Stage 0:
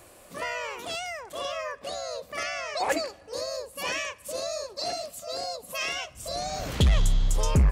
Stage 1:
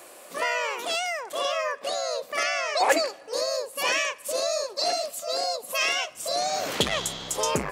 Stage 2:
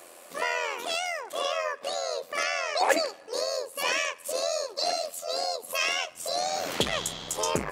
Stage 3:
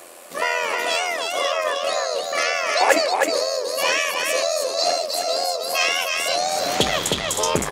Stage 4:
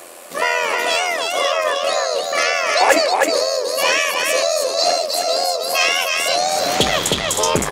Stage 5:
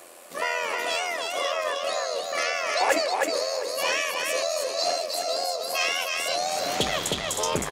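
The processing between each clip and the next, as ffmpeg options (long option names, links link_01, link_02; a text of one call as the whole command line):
ffmpeg -i in.wav -af "highpass=350,volume=6dB" out.wav
ffmpeg -i in.wav -af "tremolo=f=85:d=0.519" out.wav
ffmpeg -i in.wav -af "aecho=1:1:314:0.668,volume=6.5dB" out.wav
ffmpeg -i in.wav -af "acontrast=31,volume=-1dB" out.wav
ffmpeg -i in.wav -af "aecho=1:1:718:0.141,volume=-9dB" out.wav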